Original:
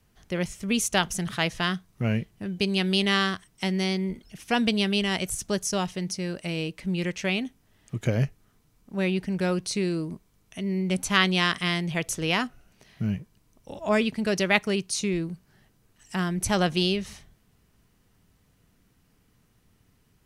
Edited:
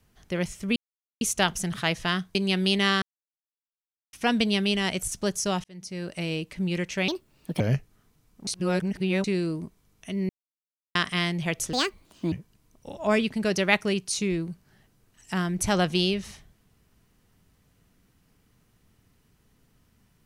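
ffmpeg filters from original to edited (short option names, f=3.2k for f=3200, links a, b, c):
-filter_complex "[0:a]asplit=14[a][b][c][d][e][f][g][h][i][j][k][l][m][n];[a]atrim=end=0.76,asetpts=PTS-STARTPTS,afade=t=out:st=0.756:d=0.004:c=hsin,apad=pad_dur=0.45[o];[b]atrim=start=0.76:end=1.902,asetpts=PTS-STARTPTS,afade=t=in:d=0.004:c=hsin[p];[c]atrim=start=2.618:end=3.29,asetpts=PTS-STARTPTS,afade=t=out:st=0.668:d=0.004:c=hsin[q];[d]atrim=start=3.29:end=4.4,asetpts=PTS-STARTPTS,volume=0[r];[e]atrim=start=4.4:end=5.91,asetpts=PTS-STARTPTS,afade=t=in:d=0.004:c=hsin,afade=t=out:st=1.506:d=0.004:c=hsin[s];[f]atrim=start=5.91:end=7.354,asetpts=PTS-STARTPTS,afade=t=in:d=0.51[t];[g]atrim=start=7.35:end=8.09,asetpts=PTS-STARTPTS,asetrate=62622,aresample=44100[u];[h]atrim=start=8.086:end=8.962[v];[i]atrim=start=8.958:end=9.732,asetpts=PTS-STARTPTS,areverse[w];[j]atrim=start=9.728:end=10.78,asetpts=PTS-STARTPTS,afade=t=out:st=1.048:d=0.004:c=hsin[x];[k]atrim=start=10.78:end=11.44,asetpts=PTS-STARTPTS,volume=0[y];[l]atrim=start=11.44:end=12.224,asetpts=PTS-STARTPTS,afade=t=in:d=0.004:c=hsin[z];[m]atrim=start=12.22:end=13.14,asetpts=PTS-STARTPTS,asetrate=68796,aresample=44100[aa];[n]atrim=start=13.136[ab];[o][p]concat=n=2:v=0:a=1[ac];[q][r][s][t]concat=n=4:v=0:a=1[ad];[ac][ad]acrossfade=d=0.004:c1=hsin:c2=hsin[ae];[ae][u]acrossfade=d=0.004:c1=hsin:c2=hsin[af];[af][v]acrossfade=d=0.004:c1=hsin:c2=hsin[ag];[ag][w]acrossfade=d=0.004:c1=hsin:c2=hsin[ah];[x][y][z]concat=n=3:v=0:a=1[ai];[ah][ai]acrossfade=d=0.004:c1=hsin:c2=hsin[aj];[aj][aa]acrossfade=d=0.004:c1=hsin:c2=hsin[ak];[ak][ab]acrossfade=d=0.004:c1=hsin:c2=hsin"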